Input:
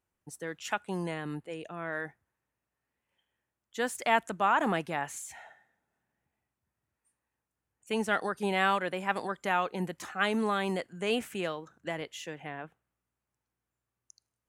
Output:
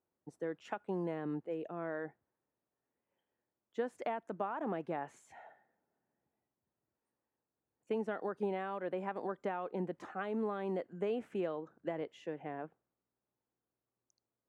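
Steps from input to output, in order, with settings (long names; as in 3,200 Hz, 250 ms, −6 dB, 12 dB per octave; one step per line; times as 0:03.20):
downward compressor 10 to 1, threshold −31 dBFS, peak gain reduction 12.5 dB
resonant band-pass 400 Hz, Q 0.84
level +2 dB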